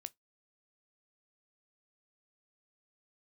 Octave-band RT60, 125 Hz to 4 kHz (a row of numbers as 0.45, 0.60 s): 0.15, 0.15, 0.15, 0.15, 0.15, 0.15 s